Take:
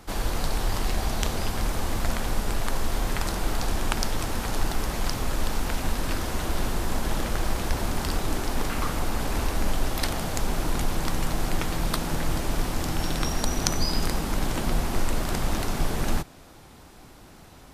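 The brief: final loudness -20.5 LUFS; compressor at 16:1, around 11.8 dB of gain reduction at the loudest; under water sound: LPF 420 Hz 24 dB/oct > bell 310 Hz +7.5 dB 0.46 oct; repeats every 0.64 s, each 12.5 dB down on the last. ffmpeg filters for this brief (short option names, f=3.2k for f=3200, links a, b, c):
-af "acompressor=threshold=-30dB:ratio=16,lowpass=f=420:w=0.5412,lowpass=f=420:w=1.3066,equalizer=f=310:t=o:w=0.46:g=7.5,aecho=1:1:640|1280|1920:0.237|0.0569|0.0137,volume=19.5dB"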